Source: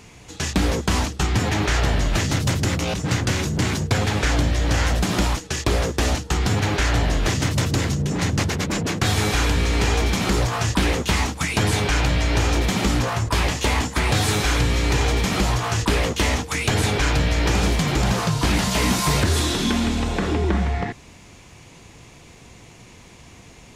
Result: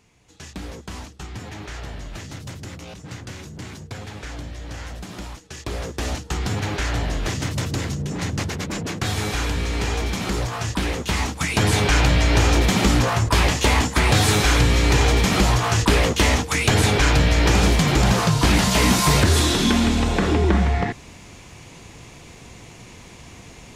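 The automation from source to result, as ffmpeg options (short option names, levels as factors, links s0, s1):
-af "volume=1.41,afade=t=in:st=5.38:d=0.89:silence=0.316228,afade=t=in:st=10.97:d=0.97:silence=0.446684"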